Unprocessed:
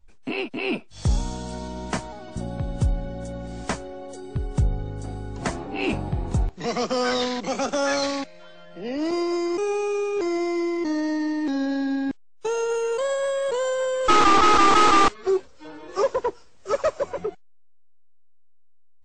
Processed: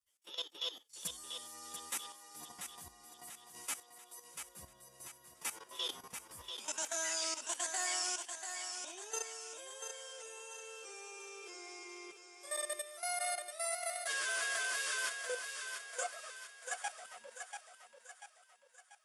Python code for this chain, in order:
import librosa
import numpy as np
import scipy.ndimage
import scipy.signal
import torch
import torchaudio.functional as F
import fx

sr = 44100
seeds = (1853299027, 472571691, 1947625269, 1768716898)

p1 = fx.pitch_bins(x, sr, semitones=4.5)
p2 = np.diff(p1, prepend=0.0)
p3 = fx.notch(p2, sr, hz=4100.0, q=10.0)
p4 = fx.level_steps(p3, sr, step_db=14)
p5 = p4 + fx.echo_thinned(p4, sr, ms=689, feedback_pct=47, hz=300.0, wet_db=-6.5, dry=0)
y = p5 * librosa.db_to_amplitude(5.0)